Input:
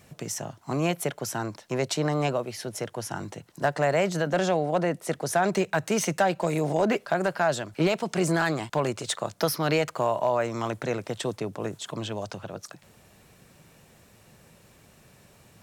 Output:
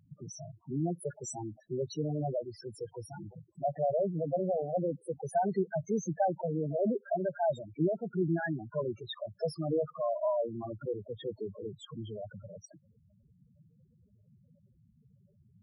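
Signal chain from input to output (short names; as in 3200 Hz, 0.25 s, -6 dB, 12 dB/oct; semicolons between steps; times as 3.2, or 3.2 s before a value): 1.04–1.51 bell 7900 Hz +12.5 dB 1.3 oct; loudest bins only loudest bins 4; gain -3.5 dB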